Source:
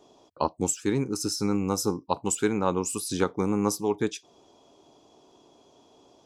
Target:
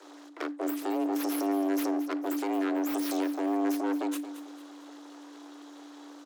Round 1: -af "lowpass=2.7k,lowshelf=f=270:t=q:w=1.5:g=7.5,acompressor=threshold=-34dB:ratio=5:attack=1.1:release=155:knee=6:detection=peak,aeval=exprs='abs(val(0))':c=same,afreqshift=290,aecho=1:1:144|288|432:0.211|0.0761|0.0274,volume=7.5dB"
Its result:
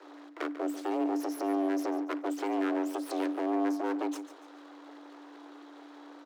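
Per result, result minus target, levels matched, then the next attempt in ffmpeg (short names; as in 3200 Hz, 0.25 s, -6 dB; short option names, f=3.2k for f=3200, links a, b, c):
echo 80 ms early; 8000 Hz band -5.0 dB
-af "lowpass=2.7k,lowshelf=f=270:t=q:w=1.5:g=7.5,acompressor=threshold=-34dB:ratio=5:attack=1.1:release=155:knee=6:detection=peak,aeval=exprs='abs(val(0))':c=same,afreqshift=290,aecho=1:1:224|448|672:0.211|0.0761|0.0274,volume=7.5dB"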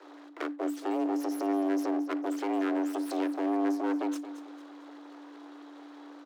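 8000 Hz band -6.0 dB
-af "lowpass=9.7k,lowshelf=f=270:t=q:w=1.5:g=7.5,acompressor=threshold=-34dB:ratio=5:attack=1.1:release=155:knee=6:detection=peak,aeval=exprs='abs(val(0))':c=same,afreqshift=290,aecho=1:1:224|448|672:0.211|0.0761|0.0274,volume=7.5dB"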